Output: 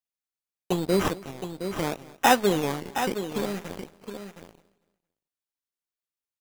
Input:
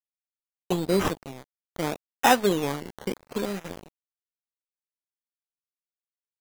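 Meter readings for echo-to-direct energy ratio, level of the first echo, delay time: −8.5 dB, −21.0 dB, 225 ms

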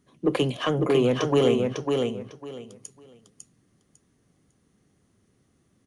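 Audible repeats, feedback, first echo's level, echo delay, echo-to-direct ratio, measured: 3, 21%, −4.0 dB, 551 ms, −4.0 dB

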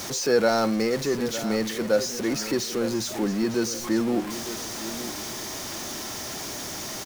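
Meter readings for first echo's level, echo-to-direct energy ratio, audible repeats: −12.5 dB, −12.0 dB, 2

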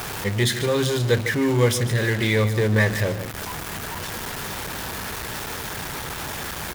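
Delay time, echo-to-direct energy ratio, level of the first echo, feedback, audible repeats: 149 ms, −13.0 dB, −13.0 dB, repeats not evenly spaced, 1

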